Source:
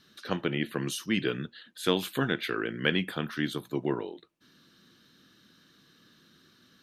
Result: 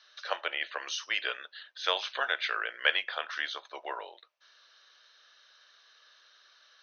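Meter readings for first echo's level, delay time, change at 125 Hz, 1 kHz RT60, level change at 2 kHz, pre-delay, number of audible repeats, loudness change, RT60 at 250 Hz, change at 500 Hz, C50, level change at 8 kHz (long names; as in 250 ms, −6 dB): no echo audible, no echo audible, below −40 dB, no reverb audible, +3.0 dB, no reverb audible, no echo audible, −1.0 dB, no reverb audible, −8.0 dB, no reverb audible, −3.5 dB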